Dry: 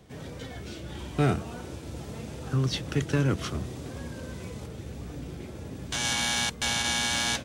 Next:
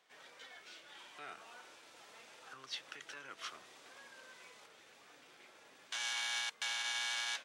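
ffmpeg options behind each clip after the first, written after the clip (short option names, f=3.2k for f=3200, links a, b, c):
-af "lowpass=f=3.3k:p=1,alimiter=limit=-23dB:level=0:latency=1:release=84,highpass=1.2k,volume=-4.5dB"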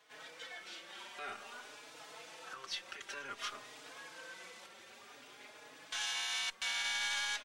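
-filter_complex "[0:a]alimiter=level_in=9.5dB:limit=-24dB:level=0:latency=1:release=203,volume=-9.5dB,aeval=exprs='0.0224*(cos(1*acos(clip(val(0)/0.0224,-1,1)))-cos(1*PI/2))+0.000708*(cos(4*acos(clip(val(0)/0.0224,-1,1)))-cos(4*PI/2))':c=same,asplit=2[a][b];[b]adelay=4.3,afreqshift=0.53[c];[a][c]amix=inputs=2:normalize=1,volume=8.5dB"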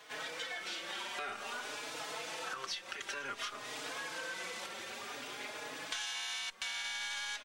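-af "acompressor=threshold=-49dB:ratio=8,volume=11.5dB"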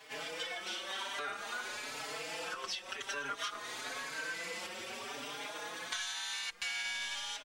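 -filter_complex "[0:a]asplit=2[a][b];[b]adelay=4.7,afreqshift=0.97[c];[a][c]amix=inputs=2:normalize=1,volume=4dB"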